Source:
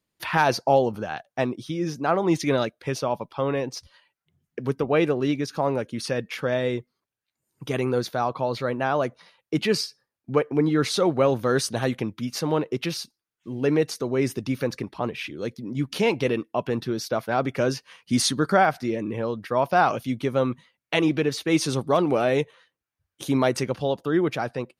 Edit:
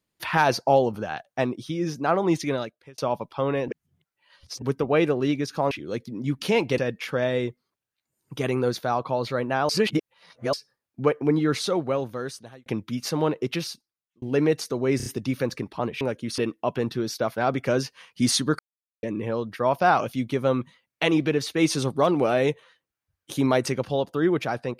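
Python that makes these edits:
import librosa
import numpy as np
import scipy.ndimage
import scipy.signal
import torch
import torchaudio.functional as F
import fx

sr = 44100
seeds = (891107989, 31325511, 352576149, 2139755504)

y = fx.edit(x, sr, fx.fade_out_span(start_s=2.25, length_s=0.73),
    fx.reverse_span(start_s=3.68, length_s=0.94),
    fx.swap(start_s=5.71, length_s=0.37, other_s=15.22, other_length_s=1.07),
    fx.reverse_span(start_s=8.99, length_s=0.84),
    fx.fade_out_span(start_s=10.6, length_s=1.36),
    fx.fade_out_span(start_s=12.85, length_s=0.67),
    fx.stutter(start_s=14.27, slice_s=0.03, count=4),
    fx.silence(start_s=18.5, length_s=0.44), tone=tone)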